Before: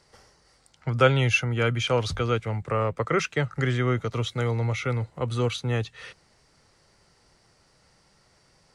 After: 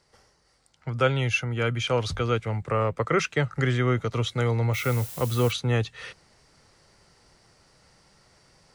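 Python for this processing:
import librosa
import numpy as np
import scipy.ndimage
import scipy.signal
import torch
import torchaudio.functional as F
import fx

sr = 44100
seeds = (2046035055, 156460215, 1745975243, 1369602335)

y = fx.rider(x, sr, range_db=10, speed_s=2.0)
y = fx.dmg_noise_colour(y, sr, seeds[0], colour='blue', level_db=-40.0, at=(4.73, 5.51), fade=0.02)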